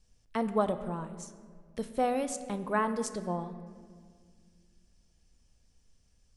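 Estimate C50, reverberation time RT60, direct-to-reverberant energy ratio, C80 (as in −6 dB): 11.5 dB, 1.9 s, 9.5 dB, 12.5 dB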